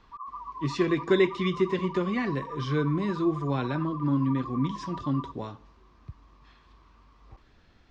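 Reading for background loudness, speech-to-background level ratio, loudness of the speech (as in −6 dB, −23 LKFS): −40.0 LKFS, 12.0 dB, −28.0 LKFS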